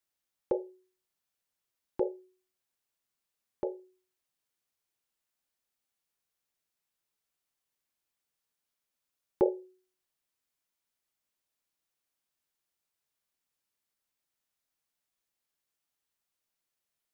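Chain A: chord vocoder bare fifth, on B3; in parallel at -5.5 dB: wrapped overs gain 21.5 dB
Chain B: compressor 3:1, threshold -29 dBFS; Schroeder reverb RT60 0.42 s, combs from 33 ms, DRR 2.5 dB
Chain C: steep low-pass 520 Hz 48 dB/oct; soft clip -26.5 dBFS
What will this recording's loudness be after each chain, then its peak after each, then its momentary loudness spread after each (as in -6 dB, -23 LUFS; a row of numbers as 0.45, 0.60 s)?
-33.5, -37.5, -39.5 LUFS; -15.0, -16.5, -26.5 dBFS; 16, 19, 15 LU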